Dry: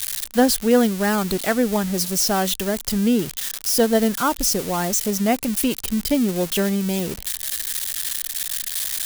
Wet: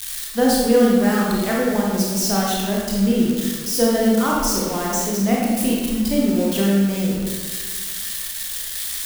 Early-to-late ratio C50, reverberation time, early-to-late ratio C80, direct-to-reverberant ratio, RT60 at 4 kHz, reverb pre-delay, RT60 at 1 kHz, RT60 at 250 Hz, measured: −1.0 dB, 1.5 s, 2.0 dB, −4.0 dB, 0.95 s, 25 ms, 1.4 s, 1.9 s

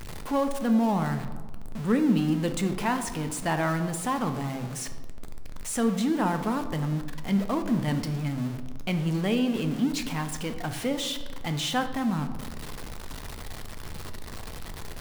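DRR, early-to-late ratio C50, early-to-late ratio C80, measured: 7.0 dB, 10.0 dB, 12.0 dB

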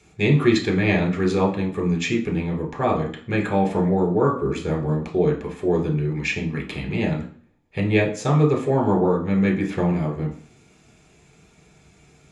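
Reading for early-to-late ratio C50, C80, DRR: 9.5 dB, 14.0 dB, 1.0 dB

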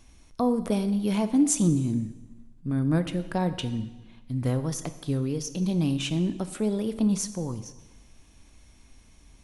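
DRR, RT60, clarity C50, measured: 10.5 dB, 1.2 s, 12.5 dB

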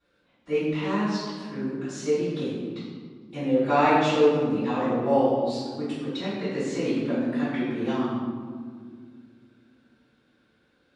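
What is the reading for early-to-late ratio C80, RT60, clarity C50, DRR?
1.0 dB, 2.0 s, −2.0 dB, −16.0 dB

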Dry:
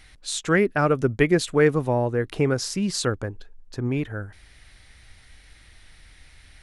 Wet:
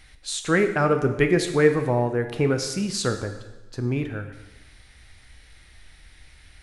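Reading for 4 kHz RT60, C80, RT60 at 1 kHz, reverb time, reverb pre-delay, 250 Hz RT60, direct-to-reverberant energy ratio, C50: 1.0 s, 11.0 dB, 1.1 s, 1.1 s, 6 ms, 1.1 s, 6.5 dB, 9.0 dB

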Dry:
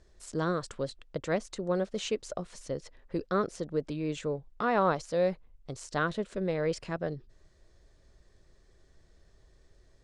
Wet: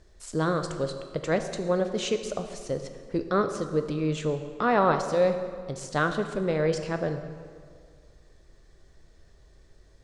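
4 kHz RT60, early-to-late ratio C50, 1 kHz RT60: 1.4 s, 8.5 dB, 1.9 s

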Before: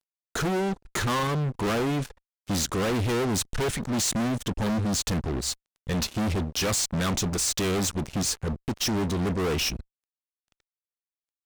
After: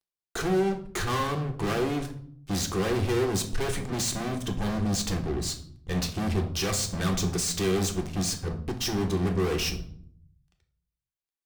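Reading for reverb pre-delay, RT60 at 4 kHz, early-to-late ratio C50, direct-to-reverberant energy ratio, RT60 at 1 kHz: 3 ms, 0.40 s, 11.0 dB, 3.0 dB, 0.55 s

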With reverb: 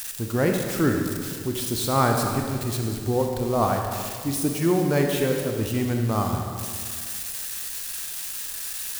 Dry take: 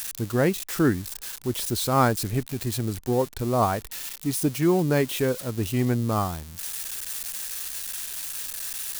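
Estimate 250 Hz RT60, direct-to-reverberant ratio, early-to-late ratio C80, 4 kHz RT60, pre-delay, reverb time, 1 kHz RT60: 2.1 s, 2.0 dB, 4.0 dB, 1.8 s, 31 ms, 2.0 s, 2.0 s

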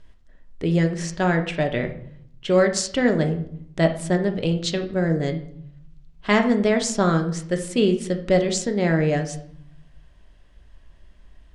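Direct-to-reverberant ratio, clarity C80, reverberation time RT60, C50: 4.5 dB, 14.0 dB, 0.65 s, 10.5 dB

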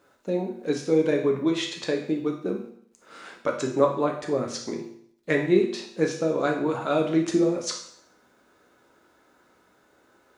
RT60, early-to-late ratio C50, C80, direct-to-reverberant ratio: 0.65 s, 7.0 dB, 10.0 dB, 1.0 dB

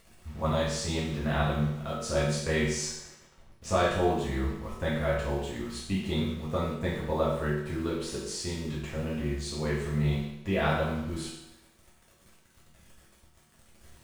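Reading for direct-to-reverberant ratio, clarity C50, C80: −8.0 dB, 2.0 dB, 4.5 dB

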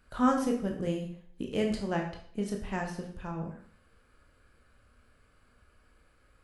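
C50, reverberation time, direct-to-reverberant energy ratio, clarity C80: 6.5 dB, 0.55 s, 1.0 dB, 10.0 dB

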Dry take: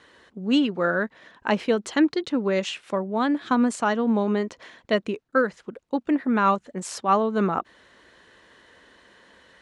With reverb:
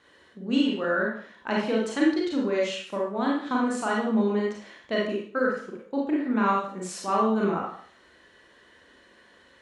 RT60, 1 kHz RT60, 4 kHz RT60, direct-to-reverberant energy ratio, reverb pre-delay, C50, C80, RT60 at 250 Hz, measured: 0.50 s, 0.50 s, 0.45 s, −3.5 dB, 31 ms, 1.5 dB, 6.5 dB, 0.50 s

